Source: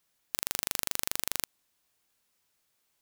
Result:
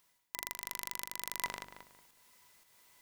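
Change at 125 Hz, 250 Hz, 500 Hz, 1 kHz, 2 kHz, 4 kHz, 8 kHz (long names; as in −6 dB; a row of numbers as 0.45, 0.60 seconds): −8.0, −7.5, −6.0, +1.0, −2.0, −8.0, −8.0 decibels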